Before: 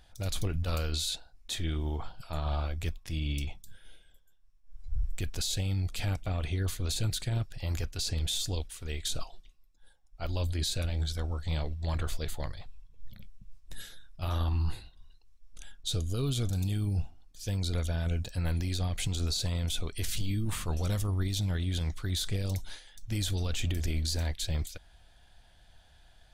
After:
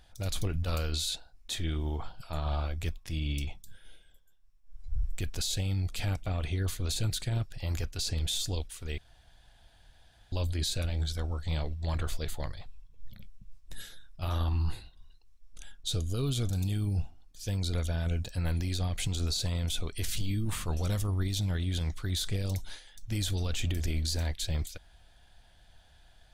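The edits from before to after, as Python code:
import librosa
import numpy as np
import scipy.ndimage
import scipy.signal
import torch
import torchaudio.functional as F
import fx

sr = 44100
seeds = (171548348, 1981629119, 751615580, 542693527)

y = fx.edit(x, sr, fx.room_tone_fill(start_s=8.98, length_s=1.34), tone=tone)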